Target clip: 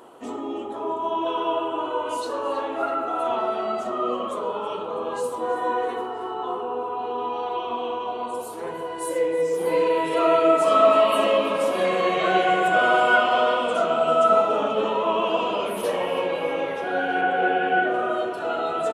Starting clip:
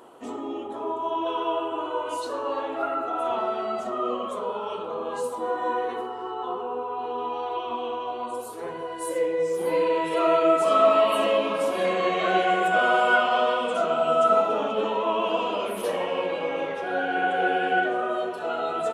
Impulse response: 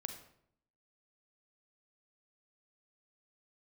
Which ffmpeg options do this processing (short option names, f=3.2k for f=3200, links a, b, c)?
-filter_complex "[0:a]asettb=1/sr,asplit=3[a][b][c];[a]atrim=end=17.214[d];[b]atrim=start=17.21:end=17.94,asetpts=PTS-STARTPTS,afade=t=in:d=0.004:c=qsin,afade=t=out:st=0.726:d=0.004:c=qsin,acrossover=split=3500[e][f];[f]acompressor=threshold=-59dB:ratio=4:attack=1:release=60[g];[e][g]amix=inputs=2:normalize=0[h];[c]atrim=start=17.936[i];[d][h]acrossfade=d=0.004:c1=hsin:c2=qsin[j];[j][i]acrossfade=d=0.004:c1=qsin:c2=hsin,asplit=2[k][l];[l]asplit=5[m][n][o][p][q];[m]adelay=324,afreqshift=-31,volume=-15.5dB[r];[n]adelay=648,afreqshift=-62,volume=-20.5dB[s];[o]adelay=972,afreqshift=-93,volume=-25.6dB[t];[p]adelay=1296,afreqshift=-124,volume=-30.6dB[u];[q]adelay=1620,afreqshift=-155,volume=-35.6dB[v];[r][s][t][u][v]amix=inputs=5:normalize=0[w];[k][w]amix=inputs=2:normalize=0,volume=2dB"